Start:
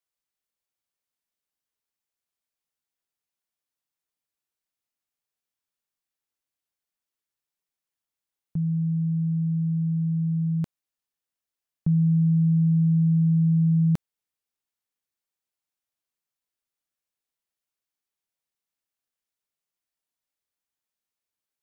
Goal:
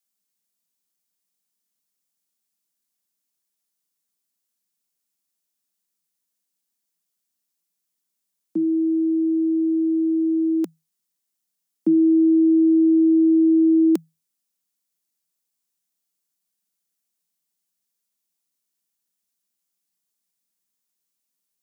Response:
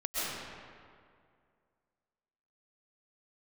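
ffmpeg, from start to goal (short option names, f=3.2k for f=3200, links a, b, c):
-af "afreqshift=160,bass=f=250:g=14,treble=f=4k:g=11"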